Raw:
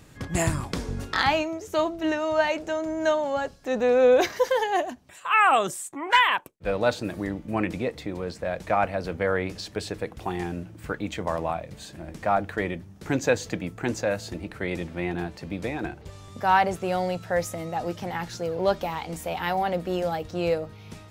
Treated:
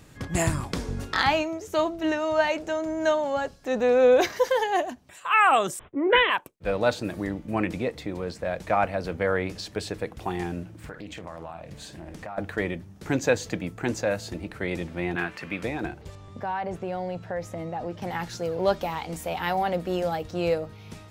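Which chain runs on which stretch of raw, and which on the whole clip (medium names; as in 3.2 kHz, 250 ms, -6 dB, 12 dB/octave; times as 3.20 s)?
5.79–6.30 s: resonant low shelf 650 Hz +10 dB, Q 3 + careless resampling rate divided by 6×, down none, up filtered + three bands expanded up and down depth 100%
10.77–12.38 s: doubling 48 ms -12.5 dB + compression 5:1, threshold -35 dBFS + loudspeaker Doppler distortion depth 0.25 ms
15.16–15.63 s: high-pass 190 Hz 6 dB/octave + high-order bell 1.8 kHz +11 dB
16.15–18.02 s: compression 3:1, threshold -27 dBFS + low-pass 1.8 kHz 6 dB/octave + band-stop 1.3 kHz, Q 16
whole clip: none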